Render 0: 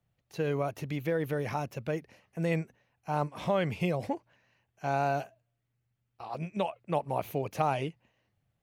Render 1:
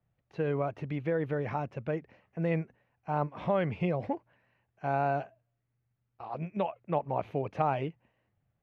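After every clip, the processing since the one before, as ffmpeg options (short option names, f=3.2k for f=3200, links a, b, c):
-af "lowpass=2.2k"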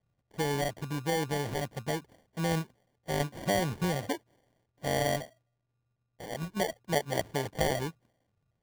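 -af "acrusher=samples=34:mix=1:aa=0.000001"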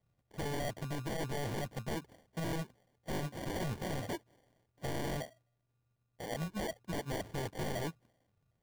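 -af "aeval=exprs='0.0266*(abs(mod(val(0)/0.0266+3,4)-2)-1)':c=same"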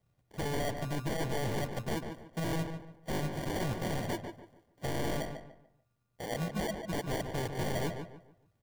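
-filter_complex "[0:a]asplit=2[a][b];[b]adelay=146,lowpass=f=2.5k:p=1,volume=-6.5dB,asplit=2[c][d];[d]adelay=146,lowpass=f=2.5k:p=1,volume=0.32,asplit=2[e][f];[f]adelay=146,lowpass=f=2.5k:p=1,volume=0.32,asplit=2[g][h];[h]adelay=146,lowpass=f=2.5k:p=1,volume=0.32[i];[a][c][e][g][i]amix=inputs=5:normalize=0,volume=3dB"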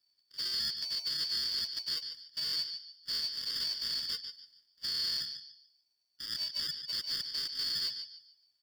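-af "afftfilt=real='real(if(lt(b,272),68*(eq(floor(b/68),0)*3+eq(floor(b/68),1)*2+eq(floor(b/68),2)*1+eq(floor(b/68),3)*0)+mod(b,68),b),0)':imag='imag(if(lt(b,272),68*(eq(floor(b/68),0)*3+eq(floor(b/68),1)*2+eq(floor(b/68),2)*1+eq(floor(b/68),3)*0)+mod(b,68),b),0)':win_size=2048:overlap=0.75,volume=-2dB"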